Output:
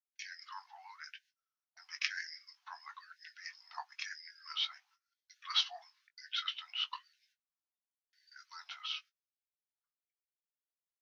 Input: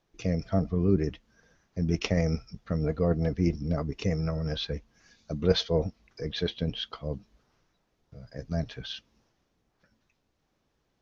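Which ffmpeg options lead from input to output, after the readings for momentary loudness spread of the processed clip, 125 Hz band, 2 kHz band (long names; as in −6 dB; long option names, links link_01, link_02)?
18 LU, below −40 dB, −1.0 dB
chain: -filter_complex "[0:a]agate=range=-30dB:threshold=-53dB:ratio=16:detection=peak,asplit=2[link_01][link_02];[link_02]adelay=20,volume=-11dB[link_03];[link_01][link_03]amix=inputs=2:normalize=0,afreqshift=-280,afftfilt=real='re*gte(b*sr/1024,660*pow(1500/660,0.5+0.5*sin(2*PI*1*pts/sr)))':imag='im*gte(b*sr/1024,660*pow(1500/660,0.5+0.5*sin(2*PI*1*pts/sr)))':win_size=1024:overlap=0.75,volume=-1dB"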